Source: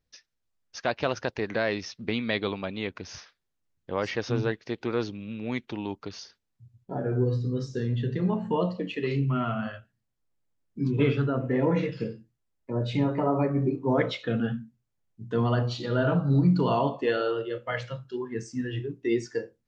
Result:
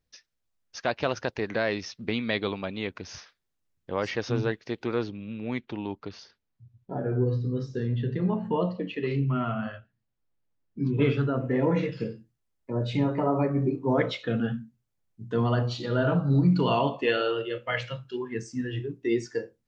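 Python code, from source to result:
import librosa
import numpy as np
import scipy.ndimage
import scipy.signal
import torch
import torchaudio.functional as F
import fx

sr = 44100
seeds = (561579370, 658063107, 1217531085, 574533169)

y = fx.air_absorb(x, sr, metres=130.0, at=(4.99, 11.02))
y = fx.peak_eq(y, sr, hz=2600.0, db=8.5, octaves=0.81, at=(16.52, 18.38))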